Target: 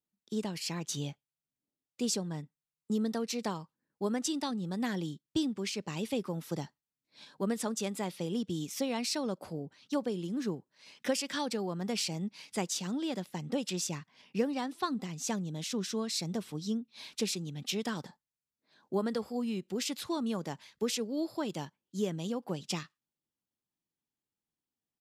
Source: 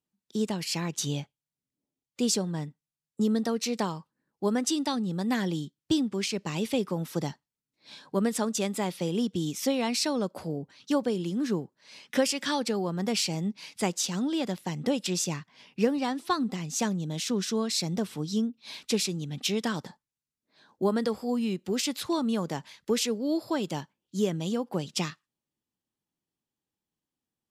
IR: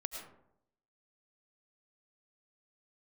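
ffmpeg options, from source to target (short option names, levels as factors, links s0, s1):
-af "atempo=1.1,volume=0.531"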